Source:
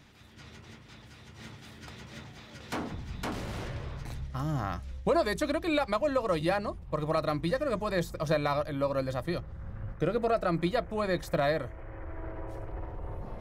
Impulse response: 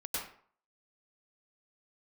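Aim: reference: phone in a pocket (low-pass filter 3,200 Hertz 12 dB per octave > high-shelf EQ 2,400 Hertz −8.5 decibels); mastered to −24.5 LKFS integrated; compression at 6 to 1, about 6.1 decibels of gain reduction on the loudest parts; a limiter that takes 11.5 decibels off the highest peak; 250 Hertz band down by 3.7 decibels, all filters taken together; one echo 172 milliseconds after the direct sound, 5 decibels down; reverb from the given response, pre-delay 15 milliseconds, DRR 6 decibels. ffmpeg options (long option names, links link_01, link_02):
-filter_complex "[0:a]equalizer=frequency=250:width_type=o:gain=-5.5,acompressor=threshold=-30dB:ratio=6,alimiter=level_in=7.5dB:limit=-24dB:level=0:latency=1,volume=-7.5dB,aecho=1:1:172:0.562,asplit=2[link_01][link_02];[1:a]atrim=start_sample=2205,adelay=15[link_03];[link_02][link_03]afir=irnorm=-1:irlink=0,volume=-9dB[link_04];[link_01][link_04]amix=inputs=2:normalize=0,lowpass=3200,highshelf=frequency=2400:gain=-8.5,volume=16dB"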